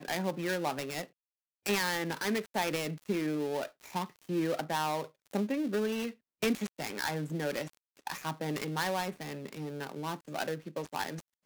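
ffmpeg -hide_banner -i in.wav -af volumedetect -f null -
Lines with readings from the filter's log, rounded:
mean_volume: -34.8 dB
max_volume: -15.3 dB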